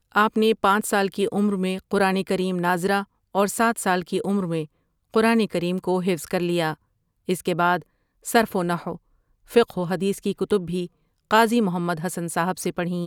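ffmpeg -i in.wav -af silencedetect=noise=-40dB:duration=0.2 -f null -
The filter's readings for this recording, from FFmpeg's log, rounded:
silence_start: 3.04
silence_end: 3.35 | silence_duration: 0.31
silence_start: 4.65
silence_end: 5.14 | silence_duration: 0.48
silence_start: 6.74
silence_end: 7.28 | silence_duration: 0.54
silence_start: 7.82
silence_end: 8.25 | silence_duration: 0.43
silence_start: 8.96
silence_end: 9.49 | silence_duration: 0.52
silence_start: 10.87
silence_end: 11.31 | silence_duration: 0.44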